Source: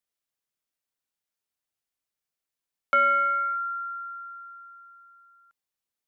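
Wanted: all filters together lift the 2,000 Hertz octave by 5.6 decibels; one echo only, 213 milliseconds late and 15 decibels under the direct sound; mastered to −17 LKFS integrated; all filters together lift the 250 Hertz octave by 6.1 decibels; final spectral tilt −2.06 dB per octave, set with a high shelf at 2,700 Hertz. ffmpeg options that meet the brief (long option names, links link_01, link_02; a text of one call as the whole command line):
ffmpeg -i in.wav -af "equalizer=frequency=250:width_type=o:gain=6,equalizer=frequency=2000:width_type=o:gain=4,highshelf=frequency=2700:gain=7.5,aecho=1:1:213:0.178,volume=3.5dB" out.wav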